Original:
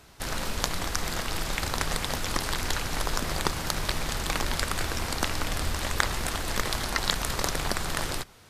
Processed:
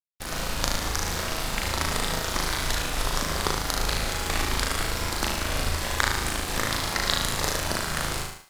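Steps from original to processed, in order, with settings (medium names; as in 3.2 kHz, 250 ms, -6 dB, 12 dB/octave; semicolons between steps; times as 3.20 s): flutter echo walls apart 6.4 m, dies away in 0.92 s; crossover distortion -38.5 dBFS; thinning echo 64 ms, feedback 41%, level -11 dB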